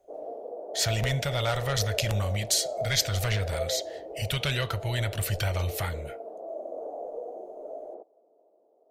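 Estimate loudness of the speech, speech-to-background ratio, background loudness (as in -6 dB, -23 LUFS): -28.5 LUFS, 9.5 dB, -38.0 LUFS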